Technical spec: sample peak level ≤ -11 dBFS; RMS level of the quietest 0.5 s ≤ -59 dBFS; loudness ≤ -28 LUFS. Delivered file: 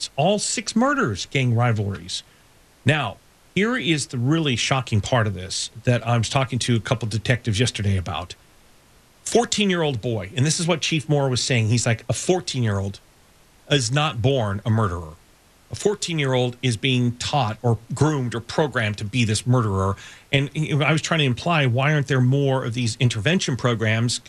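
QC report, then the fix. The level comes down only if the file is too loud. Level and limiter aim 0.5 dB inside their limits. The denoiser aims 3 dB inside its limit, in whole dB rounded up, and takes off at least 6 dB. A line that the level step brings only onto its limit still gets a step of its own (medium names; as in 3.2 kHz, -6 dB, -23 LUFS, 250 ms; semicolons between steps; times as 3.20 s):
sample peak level -5.5 dBFS: fail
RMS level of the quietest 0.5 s -54 dBFS: fail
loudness -21.5 LUFS: fail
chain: trim -7 dB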